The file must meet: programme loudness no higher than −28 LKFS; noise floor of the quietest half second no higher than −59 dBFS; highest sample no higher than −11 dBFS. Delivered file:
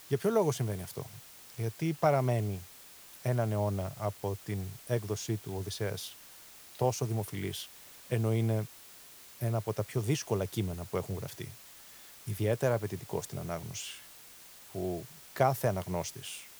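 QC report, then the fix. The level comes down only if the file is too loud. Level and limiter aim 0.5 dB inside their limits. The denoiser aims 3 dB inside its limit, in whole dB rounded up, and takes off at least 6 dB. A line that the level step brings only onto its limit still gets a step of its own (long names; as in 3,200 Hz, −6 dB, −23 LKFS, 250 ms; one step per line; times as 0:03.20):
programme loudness −33.5 LKFS: in spec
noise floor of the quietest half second −53 dBFS: out of spec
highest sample −14.0 dBFS: in spec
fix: broadband denoise 9 dB, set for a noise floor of −53 dBFS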